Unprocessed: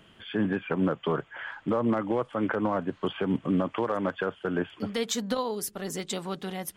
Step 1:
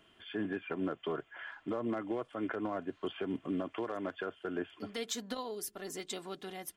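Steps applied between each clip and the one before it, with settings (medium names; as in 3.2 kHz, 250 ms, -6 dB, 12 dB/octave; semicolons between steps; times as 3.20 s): bass shelf 180 Hz -6.5 dB; comb 2.9 ms, depth 41%; dynamic bell 1 kHz, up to -5 dB, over -44 dBFS, Q 2.2; trim -7.5 dB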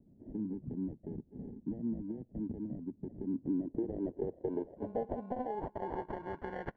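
compression, threshold -38 dBFS, peak gain reduction 8 dB; sample-and-hold 35×; low-pass sweep 230 Hz -> 1.5 kHz, 3.07–6.67 s; trim +2.5 dB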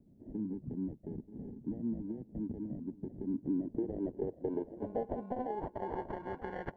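feedback delay 934 ms, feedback 28%, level -15.5 dB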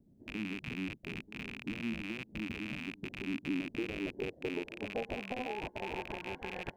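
rattle on loud lows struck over -49 dBFS, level -28 dBFS; trim -2 dB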